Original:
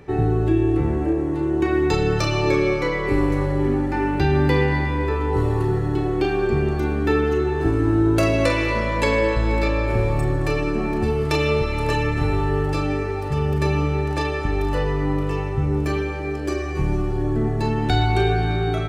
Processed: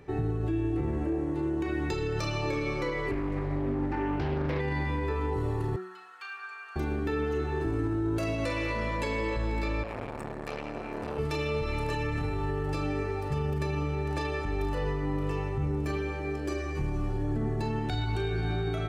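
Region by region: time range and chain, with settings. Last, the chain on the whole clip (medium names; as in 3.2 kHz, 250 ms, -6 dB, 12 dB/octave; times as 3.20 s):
3.11–4.60 s: low-pass 2.7 kHz 6 dB/octave + loudspeaker Doppler distortion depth 0.39 ms
5.76–6.76 s: ladder high-pass 1.2 kHz, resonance 60% + comb 4.3 ms, depth 97%
9.83–11.19 s: bass shelf 97 Hz -8.5 dB + transformer saturation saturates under 930 Hz
whole clip: de-hum 185.1 Hz, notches 29; peak limiter -15.5 dBFS; trim -6.5 dB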